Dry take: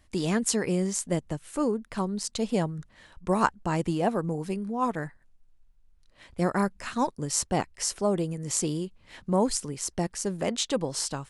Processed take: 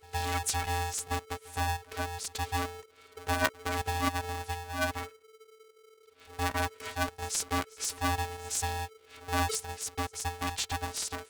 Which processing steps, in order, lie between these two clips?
robot voice 357 Hz; pre-echo 116 ms -22.5 dB; polarity switched at an audio rate 440 Hz; trim -2 dB

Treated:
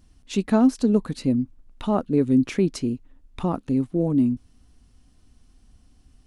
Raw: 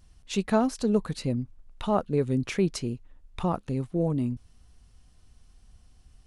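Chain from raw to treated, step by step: peaking EQ 270 Hz +11 dB 0.65 oct

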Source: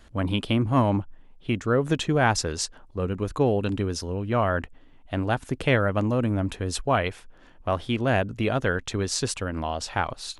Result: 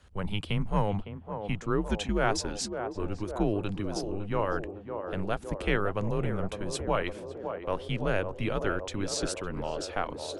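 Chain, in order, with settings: frequency shift -100 Hz; band-passed feedback delay 558 ms, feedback 77%, band-pass 510 Hz, level -6 dB; trim -5.5 dB

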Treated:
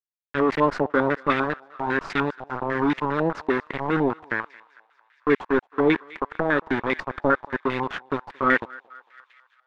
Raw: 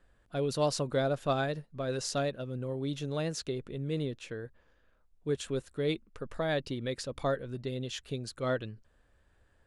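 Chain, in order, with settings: spectral replace 1.69–2.52 s, 460–950 Hz before; dynamic bell 490 Hz, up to -4 dB, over -47 dBFS, Q 3.8; in parallel at 0 dB: gain riding within 4 dB 2 s; on the sum: static phaser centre 300 Hz, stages 4; small samples zeroed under -30.5 dBFS; on a send: thinning echo 225 ms, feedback 79%, high-pass 950 Hz, level -20 dB; on the sum: step-sequenced low-pass 10 Hz 780–2000 Hz; trim +7.5 dB

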